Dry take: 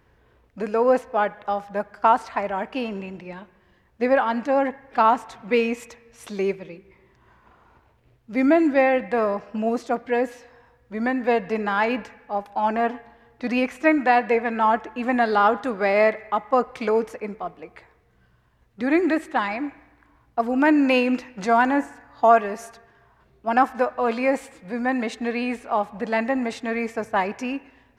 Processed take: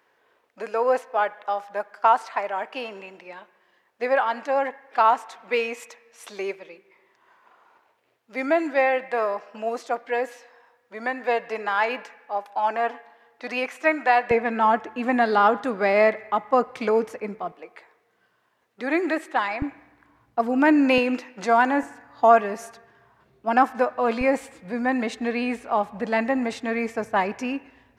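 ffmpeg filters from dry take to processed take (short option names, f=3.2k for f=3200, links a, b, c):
-af "asetnsamples=n=441:p=0,asendcmd='14.31 highpass f 120;17.52 highpass f 390;19.62 highpass f 99;20.98 highpass f 260;21.83 highpass f 110;24.21 highpass f 52',highpass=510"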